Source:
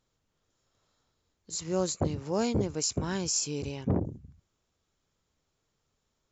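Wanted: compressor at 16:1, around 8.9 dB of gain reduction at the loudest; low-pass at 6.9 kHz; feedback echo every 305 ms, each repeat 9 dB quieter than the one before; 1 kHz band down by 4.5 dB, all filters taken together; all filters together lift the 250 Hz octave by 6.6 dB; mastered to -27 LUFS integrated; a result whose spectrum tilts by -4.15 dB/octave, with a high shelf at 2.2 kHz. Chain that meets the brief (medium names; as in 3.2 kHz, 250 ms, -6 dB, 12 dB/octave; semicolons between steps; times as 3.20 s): low-pass 6.9 kHz; peaking EQ 250 Hz +9 dB; peaking EQ 1 kHz -8.5 dB; treble shelf 2.2 kHz +7 dB; compression 16:1, threshold -26 dBFS; feedback delay 305 ms, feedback 35%, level -9 dB; trim +4 dB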